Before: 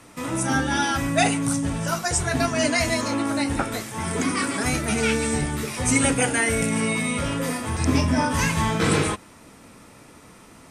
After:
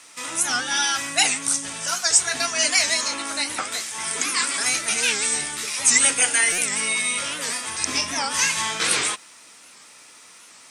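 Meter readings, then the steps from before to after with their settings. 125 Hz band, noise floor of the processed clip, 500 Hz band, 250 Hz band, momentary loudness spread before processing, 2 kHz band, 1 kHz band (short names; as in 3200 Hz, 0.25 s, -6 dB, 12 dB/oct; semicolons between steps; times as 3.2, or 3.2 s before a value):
-20.5 dB, -48 dBFS, -8.5 dB, -14.5 dB, 6 LU, +2.5 dB, -3.0 dB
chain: weighting filter ITU-R 468; bit-crush 11-bit; stuck buffer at 6.52, samples 256, times 10; record warp 78 rpm, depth 160 cents; gain -3 dB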